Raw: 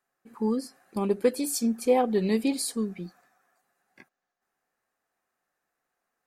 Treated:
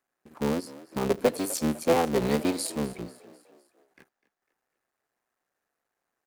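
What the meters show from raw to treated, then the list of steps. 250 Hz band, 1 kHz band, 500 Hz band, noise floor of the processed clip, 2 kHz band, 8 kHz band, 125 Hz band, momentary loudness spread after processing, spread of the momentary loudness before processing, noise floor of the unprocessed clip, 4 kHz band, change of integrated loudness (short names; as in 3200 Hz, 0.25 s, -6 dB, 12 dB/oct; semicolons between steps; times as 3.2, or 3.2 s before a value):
-2.0 dB, +1.0 dB, -0.5 dB, -85 dBFS, +4.0 dB, -1.0 dB, +2.5 dB, 11 LU, 11 LU, -84 dBFS, +1.0 dB, -0.5 dB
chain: cycle switcher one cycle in 3, muted; bell 400 Hz +2.5 dB 0.74 oct; on a send: frequency-shifting echo 0.25 s, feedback 49%, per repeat +52 Hz, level -18.5 dB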